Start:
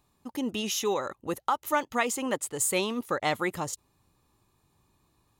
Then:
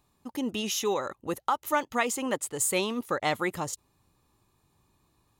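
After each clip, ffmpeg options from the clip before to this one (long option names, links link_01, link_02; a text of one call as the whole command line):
ffmpeg -i in.wav -af anull out.wav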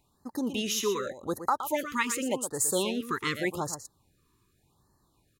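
ffmpeg -i in.wav -af "aecho=1:1:118:0.316,afftfilt=real='re*(1-between(b*sr/1024,620*pow(2900/620,0.5+0.5*sin(2*PI*0.86*pts/sr))/1.41,620*pow(2900/620,0.5+0.5*sin(2*PI*0.86*pts/sr))*1.41))':imag='im*(1-between(b*sr/1024,620*pow(2900/620,0.5+0.5*sin(2*PI*0.86*pts/sr))/1.41,620*pow(2900/620,0.5+0.5*sin(2*PI*0.86*pts/sr))*1.41))':win_size=1024:overlap=0.75" out.wav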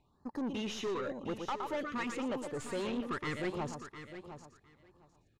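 ffmpeg -i in.wav -af "aeval=exprs='(tanh(39.8*val(0)+0.2)-tanh(0.2))/39.8':channel_layout=same,adynamicsmooth=sensitivity=1.5:basefreq=3500,aecho=1:1:707|1414:0.282|0.0423" out.wav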